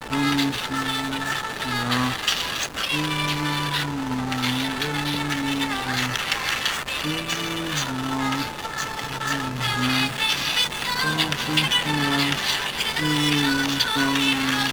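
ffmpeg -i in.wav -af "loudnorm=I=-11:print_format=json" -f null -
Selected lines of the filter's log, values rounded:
"input_i" : "-22.4",
"input_tp" : "-4.8",
"input_lra" : "3.9",
"input_thresh" : "-32.4",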